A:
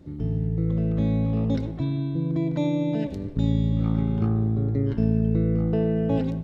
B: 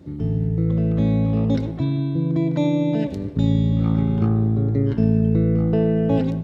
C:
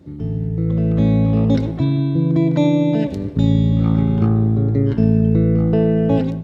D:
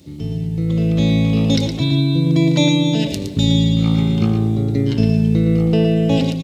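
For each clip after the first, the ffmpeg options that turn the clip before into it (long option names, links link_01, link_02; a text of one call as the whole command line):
ffmpeg -i in.wav -af "highpass=64,volume=4.5dB" out.wav
ffmpeg -i in.wav -af "dynaudnorm=framelen=510:gausssize=3:maxgain=7dB,volume=-1dB" out.wav
ffmpeg -i in.wav -af "aexciter=amount=7.1:drive=2.7:freq=2300,aecho=1:1:115:0.422,volume=-1dB" out.wav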